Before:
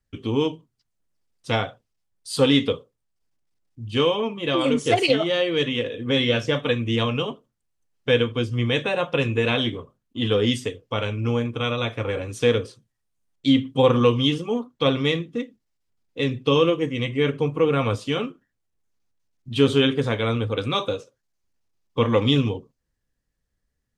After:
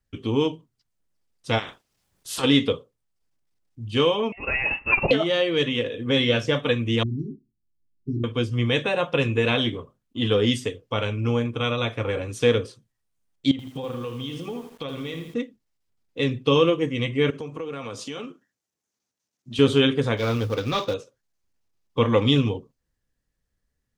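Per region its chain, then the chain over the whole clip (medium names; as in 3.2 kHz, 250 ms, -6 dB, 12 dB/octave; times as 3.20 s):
1.58–2.43 s: spectral peaks clipped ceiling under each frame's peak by 24 dB + compression, threshold -27 dBFS
4.32–5.11 s: high-pass 470 Hz 24 dB/octave + frequency inversion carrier 3.1 kHz
7.03–8.24 s: brick-wall FIR band-stop 400–4100 Hz + distance through air 390 m + doubling 19 ms -6 dB
13.51–15.34 s: compression 8:1, threshold -29 dBFS + bit-crushed delay 81 ms, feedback 55%, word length 8-bit, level -8 dB
17.30–19.59 s: high-pass 170 Hz + compression 4:1, threshold -31 dBFS + peaking EQ 6.2 kHz +7.5 dB 0.76 oct
20.17–20.94 s: CVSD coder 32 kbps + short-mantissa float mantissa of 4-bit
whole clip: none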